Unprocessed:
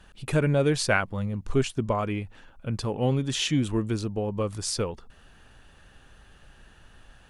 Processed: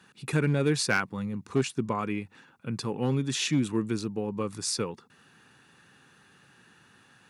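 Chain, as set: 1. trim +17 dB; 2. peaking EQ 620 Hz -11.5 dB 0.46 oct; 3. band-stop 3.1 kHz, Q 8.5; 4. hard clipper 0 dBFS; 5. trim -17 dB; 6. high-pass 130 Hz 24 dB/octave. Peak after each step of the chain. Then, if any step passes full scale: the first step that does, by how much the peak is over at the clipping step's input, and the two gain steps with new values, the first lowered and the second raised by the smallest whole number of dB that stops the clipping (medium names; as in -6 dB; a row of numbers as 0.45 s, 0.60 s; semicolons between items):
+9.0 dBFS, +7.5 dBFS, +7.0 dBFS, 0.0 dBFS, -17.0 dBFS, -11.0 dBFS; step 1, 7.0 dB; step 1 +10 dB, step 5 -10 dB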